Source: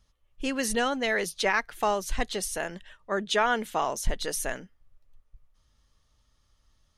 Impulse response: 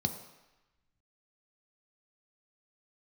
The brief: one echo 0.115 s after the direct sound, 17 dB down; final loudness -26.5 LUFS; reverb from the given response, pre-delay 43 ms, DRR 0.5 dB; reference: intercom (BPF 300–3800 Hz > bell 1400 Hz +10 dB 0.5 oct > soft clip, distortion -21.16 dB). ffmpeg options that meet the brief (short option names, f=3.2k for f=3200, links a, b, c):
-filter_complex "[0:a]aecho=1:1:115:0.141,asplit=2[a][b];[1:a]atrim=start_sample=2205,adelay=43[c];[b][c]afir=irnorm=-1:irlink=0,volume=-4.5dB[d];[a][d]amix=inputs=2:normalize=0,highpass=300,lowpass=3.8k,equalizer=f=1.4k:t=o:w=0.5:g=10,asoftclip=threshold=-10dB,volume=-2dB"